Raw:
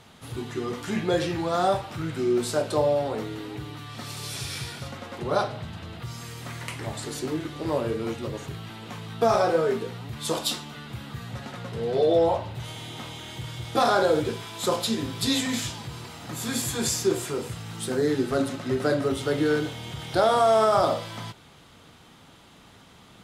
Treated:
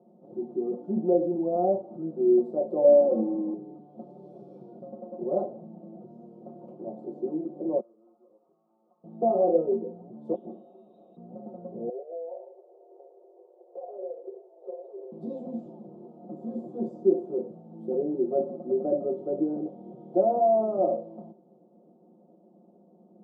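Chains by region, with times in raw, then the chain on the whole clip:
2.84–3.54 s: square wave that keeps the level + comb 3.7 ms, depth 82%
7.80–9.04 s: band-pass filter 1.2 kHz, Q 6.2 + compression 5:1, threshold -48 dBFS
10.35–11.17 s: compression 2.5:1, threshold -31 dBFS + frequency inversion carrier 3.9 kHz
11.89–15.12 s: median filter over 41 samples + steep high-pass 380 Hz 96 dB/octave + compression 5:1, threshold -35 dBFS
whole clip: elliptic band-pass 200–660 Hz, stop band 50 dB; comb 5.6 ms, depth 88%; trim -2 dB

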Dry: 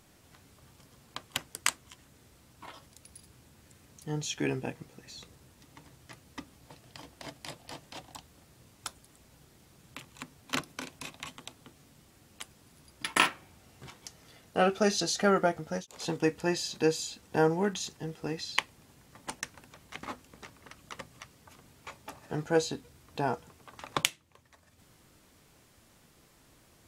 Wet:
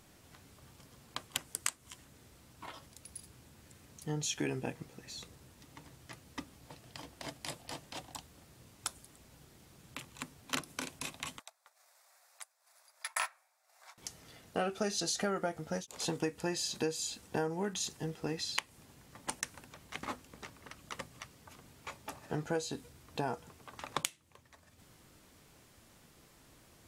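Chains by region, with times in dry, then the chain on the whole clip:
11.39–13.98 s: elliptic high-pass 620 Hz, stop band 60 dB + peaking EQ 3 kHz -13 dB 0.35 oct + transient shaper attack -5 dB, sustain -12 dB
whole clip: dynamic bell 9.6 kHz, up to +6 dB, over -56 dBFS, Q 0.94; compression 5:1, threshold -31 dBFS

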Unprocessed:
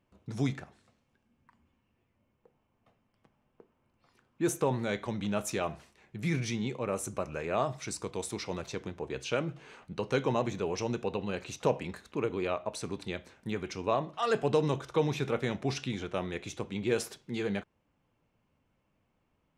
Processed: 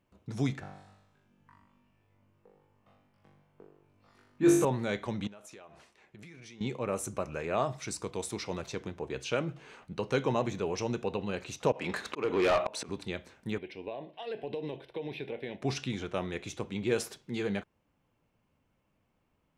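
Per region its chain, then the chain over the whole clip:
0.60–4.65 s: treble shelf 6.1 kHz -5.5 dB + flutter echo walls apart 3.5 m, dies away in 0.73 s
5.27–6.61 s: tone controls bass -9 dB, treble -2 dB + compression 16:1, threshold -46 dBFS + low-pass 11 kHz
11.72–12.89 s: bass shelf 420 Hz +4 dB + slow attack 416 ms + overdrive pedal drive 25 dB, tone 4.1 kHz, clips at -17.5 dBFS
13.58–15.62 s: tone controls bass -13 dB, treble -12 dB + compression, threshold -30 dBFS + static phaser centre 3 kHz, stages 4
whole clip: none

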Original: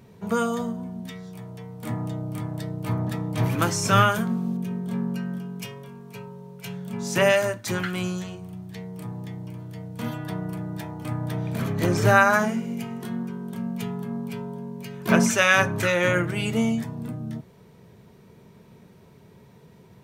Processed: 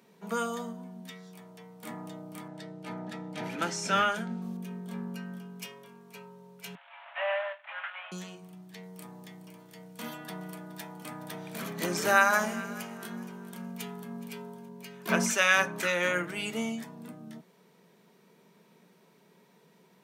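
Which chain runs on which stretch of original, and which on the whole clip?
2.48–4.42 s: Butterworth band-stop 1.1 kHz, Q 5.4 + distance through air 59 m
6.75–8.12 s: CVSD coder 16 kbps + steep high-pass 590 Hz 96 dB/octave + upward compressor, threshold -45 dBFS
8.83–14.69 s: treble shelf 4.2 kHz +5 dB + echo whose repeats swap between lows and highs 210 ms, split 940 Hz, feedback 59%, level -13.5 dB
whole clip: Chebyshev high-pass 170 Hz, order 4; tilt shelf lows -4 dB, about 690 Hz; trim -6.5 dB

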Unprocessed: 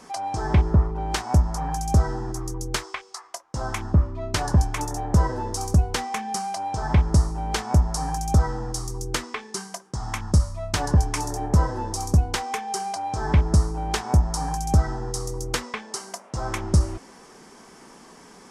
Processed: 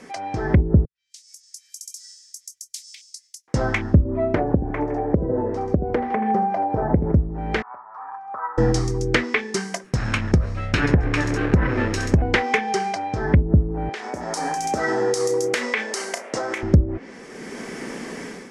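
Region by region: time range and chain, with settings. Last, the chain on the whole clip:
0.85–3.48 s: inverse Chebyshev high-pass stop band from 880 Hz, stop band 80 dB + compression 2:1, threshold -48 dBFS + tape noise reduction on one side only decoder only
4.05–7.12 s: compression 4:1, threshold -18 dBFS + peaking EQ 550 Hz +9 dB 2.7 oct + feedback delay 79 ms, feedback 39%, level -12 dB
7.62–8.58 s: Butterworth band-pass 1.1 kHz, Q 2.8 + distance through air 120 m
9.84–12.22 s: comb filter that takes the minimum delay 0.74 ms + compression 5:1, threshold -20 dBFS
13.89–16.63 s: high-pass 390 Hz + doubling 33 ms -13.5 dB + compression 12:1, threshold -31 dBFS
whole clip: low-pass that closes with the level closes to 360 Hz, closed at -15 dBFS; graphic EQ 125/250/500/1000/2000 Hz +4/+7/+8/-6/+12 dB; level rider; trim -2.5 dB

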